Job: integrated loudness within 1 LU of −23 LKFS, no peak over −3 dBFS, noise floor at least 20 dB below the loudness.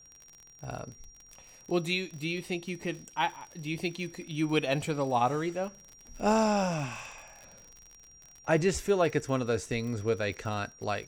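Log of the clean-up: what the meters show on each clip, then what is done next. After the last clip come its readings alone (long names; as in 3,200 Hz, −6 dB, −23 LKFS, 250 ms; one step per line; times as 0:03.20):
crackle rate 45 per second; interfering tone 5,700 Hz; level of the tone −53 dBFS; integrated loudness −31.0 LKFS; sample peak −13.5 dBFS; target loudness −23.0 LKFS
→ click removal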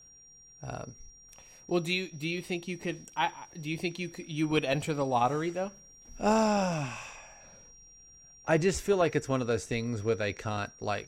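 crackle rate 0.27 per second; interfering tone 5,700 Hz; level of the tone −53 dBFS
→ notch filter 5,700 Hz, Q 30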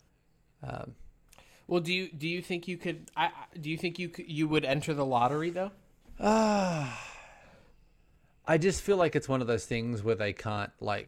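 interfering tone none found; integrated loudness −31.0 LKFS; sample peak −13.0 dBFS; target loudness −23.0 LKFS
→ level +8 dB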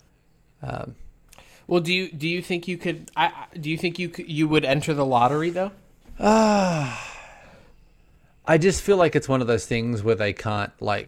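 integrated loudness −23.0 LKFS; sample peak −5.0 dBFS; background noise floor −58 dBFS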